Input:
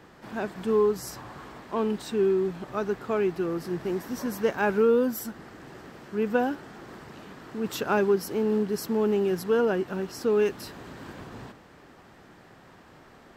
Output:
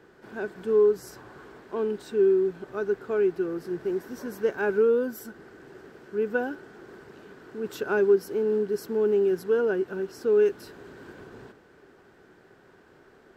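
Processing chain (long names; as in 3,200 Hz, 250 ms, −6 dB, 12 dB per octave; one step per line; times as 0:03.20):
hollow resonant body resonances 400/1,500 Hz, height 11 dB, ringing for 25 ms
level −7.5 dB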